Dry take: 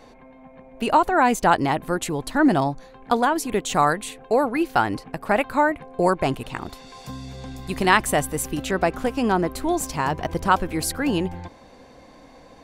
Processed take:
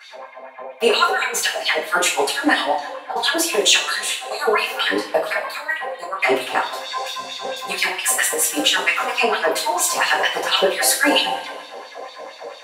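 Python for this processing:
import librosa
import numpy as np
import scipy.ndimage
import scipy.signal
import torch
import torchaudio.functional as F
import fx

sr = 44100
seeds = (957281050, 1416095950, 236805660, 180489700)

y = fx.filter_lfo_highpass(x, sr, shape='sine', hz=4.4, low_hz=480.0, high_hz=3900.0, q=4.8)
y = fx.over_compress(y, sr, threshold_db=-21.0, ratio=-0.5)
y = fx.rev_double_slope(y, sr, seeds[0], early_s=0.34, late_s=1.5, knee_db=-18, drr_db=-9.0)
y = y * librosa.db_to_amplitude(-5.0)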